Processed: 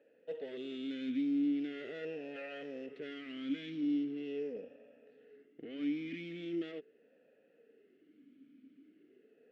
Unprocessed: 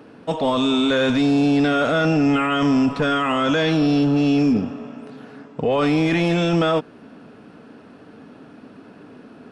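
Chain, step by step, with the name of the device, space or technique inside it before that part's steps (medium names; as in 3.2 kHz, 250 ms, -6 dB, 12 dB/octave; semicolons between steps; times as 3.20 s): talk box (valve stage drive 19 dB, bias 0.75; talking filter e-i 0.41 Hz); trim -7 dB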